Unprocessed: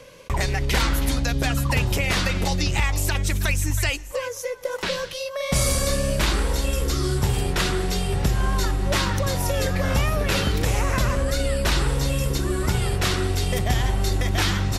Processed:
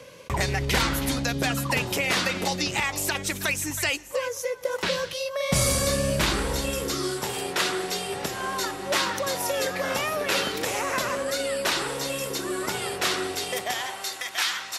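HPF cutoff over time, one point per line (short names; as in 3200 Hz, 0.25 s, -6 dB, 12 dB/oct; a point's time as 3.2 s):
0.8 s 87 Hz
1.88 s 220 Hz
3.77 s 220 Hz
4.64 s 86 Hz
6.57 s 86 Hz
7.16 s 350 Hz
13.33 s 350 Hz
14.23 s 1100 Hz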